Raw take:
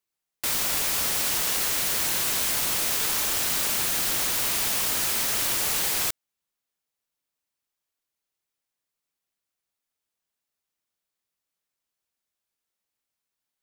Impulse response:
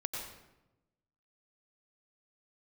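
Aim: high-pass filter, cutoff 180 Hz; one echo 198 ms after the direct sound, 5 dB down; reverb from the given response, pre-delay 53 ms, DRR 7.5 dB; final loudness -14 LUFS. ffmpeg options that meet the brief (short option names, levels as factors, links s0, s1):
-filter_complex "[0:a]highpass=180,aecho=1:1:198:0.562,asplit=2[s0][s1];[1:a]atrim=start_sample=2205,adelay=53[s2];[s1][s2]afir=irnorm=-1:irlink=0,volume=0.335[s3];[s0][s3]amix=inputs=2:normalize=0,volume=2.24"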